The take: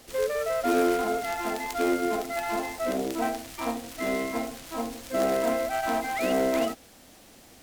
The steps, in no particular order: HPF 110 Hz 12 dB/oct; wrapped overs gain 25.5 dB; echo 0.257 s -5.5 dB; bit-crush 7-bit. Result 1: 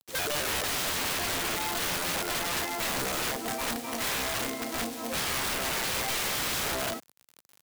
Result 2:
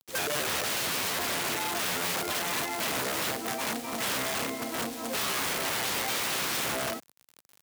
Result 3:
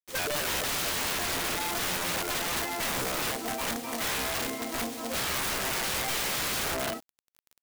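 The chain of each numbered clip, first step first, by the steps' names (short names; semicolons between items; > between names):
echo > bit-crush > HPF > wrapped overs; echo > wrapped overs > bit-crush > HPF; HPF > bit-crush > echo > wrapped overs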